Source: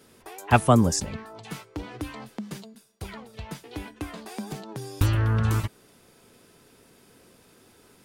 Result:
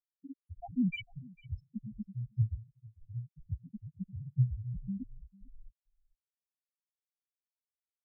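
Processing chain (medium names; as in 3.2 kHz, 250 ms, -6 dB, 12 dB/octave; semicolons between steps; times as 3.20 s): bit-reversed sample order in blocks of 64 samples; transient shaper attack +4 dB, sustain -6 dB; small samples zeroed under -43 dBFS; vibrato 1.2 Hz 78 cents; sine folder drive 18 dB, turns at -8.5 dBFS; loudest bins only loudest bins 1; on a send: delay 449 ms -23.5 dB; on the sum: mistuned SSB -91 Hz 220–3600 Hz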